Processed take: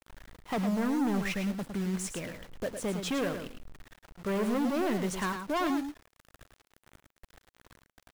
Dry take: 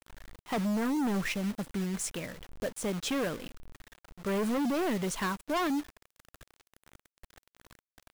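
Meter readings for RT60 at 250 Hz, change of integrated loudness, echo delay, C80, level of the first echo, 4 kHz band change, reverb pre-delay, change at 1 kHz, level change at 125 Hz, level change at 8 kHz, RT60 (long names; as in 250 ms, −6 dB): no reverb audible, +0.5 dB, 108 ms, no reverb audible, −7.5 dB, −1.5 dB, no reverb audible, +0.5 dB, +1.0 dB, −2.5 dB, no reverb audible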